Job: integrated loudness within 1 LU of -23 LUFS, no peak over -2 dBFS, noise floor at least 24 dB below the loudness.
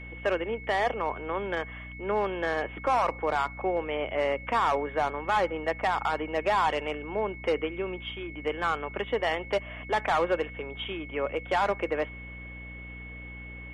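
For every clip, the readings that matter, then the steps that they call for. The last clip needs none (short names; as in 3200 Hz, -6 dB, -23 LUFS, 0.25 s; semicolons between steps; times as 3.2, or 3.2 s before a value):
hum 60 Hz; harmonics up to 300 Hz; hum level -41 dBFS; steady tone 2200 Hz; tone level -43 dBFS; loudness -29.5 LUFS; peak -17.0 dBFS; loudness target -23.0 LUFS
-> de-hum 60 Hz, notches 5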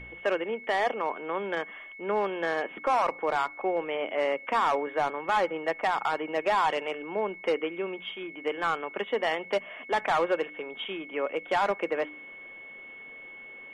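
hum none; steady tone 2200 Hz; tone level -43 dBFS
-> notch 2200 Hz, Q 30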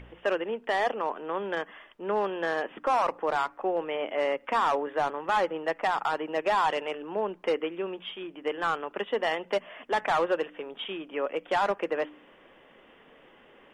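steady tone none; loudness -29.5 LUFS; peak -17.0 dBFS; loudness target -23.0 LUFS
-> gain +6.5 dB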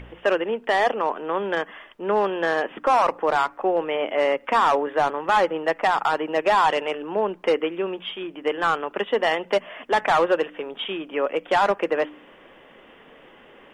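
loudness -23.0 LUFS; peak -11.0 dBFS; noise floor -50 dBFS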